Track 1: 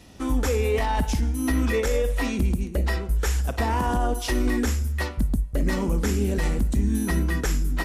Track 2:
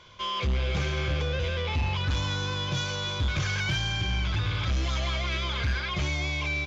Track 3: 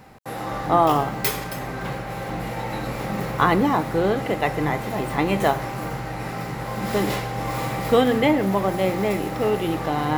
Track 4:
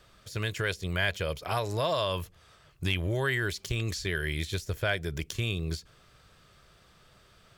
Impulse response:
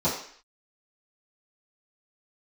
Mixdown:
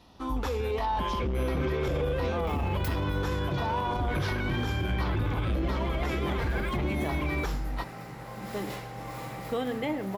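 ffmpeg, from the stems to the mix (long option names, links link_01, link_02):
-filter_complex "[0:a]equalizer=frequency=1000:width_type=o:width=1:gain=11,equalizer=frequency=2000:width_type=o:width=1:gain=-5,equalizer=frequency=4000:width_type=o:width=1:gain=8,equalizer=frequency=8000:width_type=o:width=1:gain=-12,volume=-8.5dB[link_01];[1:a]lowpass=2100,equalizer=frequency=340:width_type=o:width=1.5:gain=11.5,adelay=800,volume=-0.5dB[link_02];[2:a]adelay=1600,volume=-12dB[link_03];[3:a]adynamicsmooth=sensitivity=6:basefreq=3000,acrossover=split=730[link_04][link_05];[link_04]aeval=exprs='val(0)*(1-0.7/2+0.7/2*cos(2*PI*3*n/s))':channel_layout=same[link_06];[link_05]aeval=exprs='val(0)*(1-0.7/2-0.7/2*cos(2*PI*3*n/s))':channel_layout=same[link_07];[link_06][link_07]amix=inputs=2:normalize=0,volume=-10dB,asplit=2[link_08][link_09];[link_09]apad=whole_len=519237[link_10];[link_03][link_10]sidechaincompress=threshold=-44dB:ratio=8:attack=12:release=830[link_11];[link_01][link_02][link_11][link_08]amix=inputs=4:normalize=0,alimiter=limit=-21dB:level=0:latency=1:release=43"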